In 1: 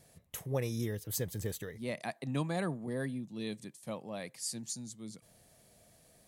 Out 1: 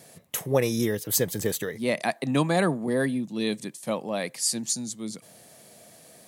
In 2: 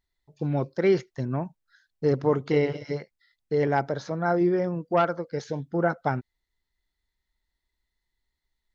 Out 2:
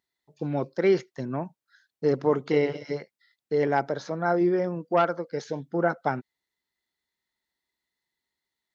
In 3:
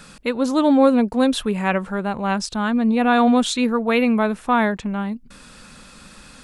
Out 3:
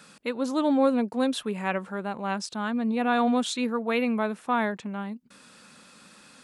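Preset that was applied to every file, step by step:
high-pass filter 180 Hz 12 dB per octave
loudness normalisation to −27 LKFS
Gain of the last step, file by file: +12.5, +0.5, −7.0 decibels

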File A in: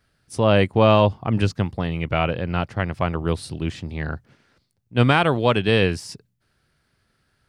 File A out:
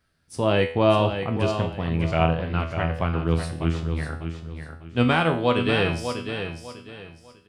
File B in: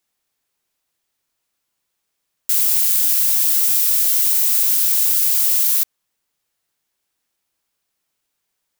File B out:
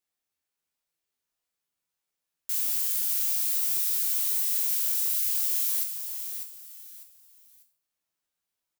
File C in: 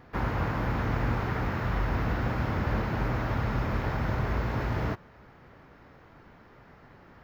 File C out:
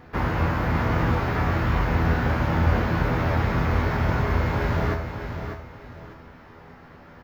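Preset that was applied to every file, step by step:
tuned comb filter 82 Hz, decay 0.47 s, harmonics all, mix 80%
on a send: repeating echo 598 ms, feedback 29%, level −8 dB
on the sum: loudness normalisation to −24 LKFS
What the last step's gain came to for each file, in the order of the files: +5.0, −3.0, +14.0 decibels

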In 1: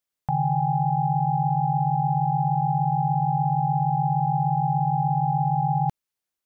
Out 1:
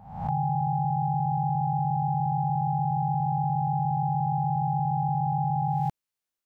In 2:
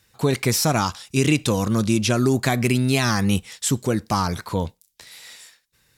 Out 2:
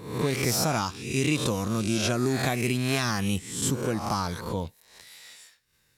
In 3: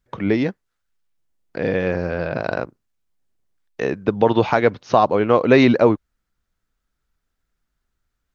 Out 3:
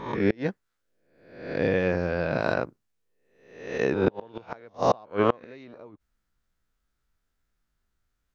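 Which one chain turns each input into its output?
peak hold with a rise ahead of every peak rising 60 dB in 0.70 s
gate with flip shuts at −4 dBFS, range −30 dB
loudness normalisation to −27 LKFS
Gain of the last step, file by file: −4.5, −7.5, −4.0 decibels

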